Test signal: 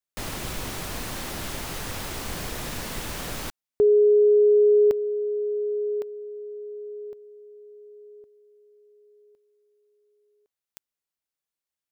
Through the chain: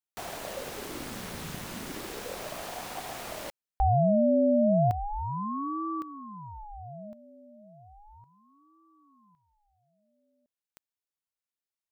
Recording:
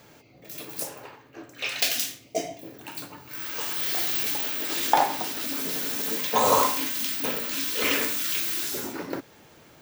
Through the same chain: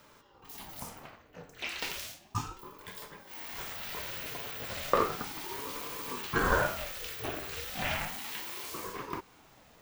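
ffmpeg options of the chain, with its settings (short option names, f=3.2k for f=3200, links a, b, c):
-filter_complex "[0:a]acrossover=split=2800[a][b];[b]acompressor=threshold=-33dB:ratio=4:attack=1:release=60[c];[a][c]amix=inputs=2:normalize=0,aeval=exprs='val(0)*sin(2*PI*450*n/s+450*0.65/0.34*sin(2*PI*0.34*n/s))':c=same,volume=-3dB"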